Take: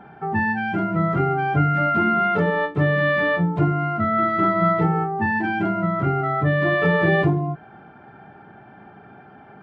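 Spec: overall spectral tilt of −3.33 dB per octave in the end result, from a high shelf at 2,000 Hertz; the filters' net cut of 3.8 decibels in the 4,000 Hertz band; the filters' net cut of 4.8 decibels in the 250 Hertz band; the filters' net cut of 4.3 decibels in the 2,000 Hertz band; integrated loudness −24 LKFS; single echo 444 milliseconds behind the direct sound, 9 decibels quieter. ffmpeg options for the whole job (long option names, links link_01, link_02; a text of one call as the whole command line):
ffmpeg -i in.wav -af "equalizer=frequency=250:width_type=o:gain=-8.5,highshelf=frequency=2000:gain=6.5,equalizer=frequency=2000:width_type=o:gain=-7,equalizer=frequency=4000:width_type=o:gain=-8.5,aecho=1:1:444:0.355,volume=-1dB" out.wav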